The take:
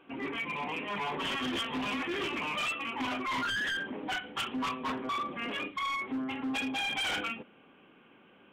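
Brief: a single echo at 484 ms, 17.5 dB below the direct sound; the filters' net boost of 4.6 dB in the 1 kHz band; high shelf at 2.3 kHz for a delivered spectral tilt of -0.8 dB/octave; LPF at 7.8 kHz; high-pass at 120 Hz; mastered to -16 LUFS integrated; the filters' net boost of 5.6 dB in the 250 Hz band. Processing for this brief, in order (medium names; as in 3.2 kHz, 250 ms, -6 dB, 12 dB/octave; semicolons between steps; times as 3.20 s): high-pass 120 Hz; low-pass 7.8 kHz; peaking EQ 250 Hz +6 dB; peaking EQ 1 kHz +4.5 dB; treble shelf 2.3 kHz +3 dB; delay 484 ms -17.5 dB; trim +13.5 dB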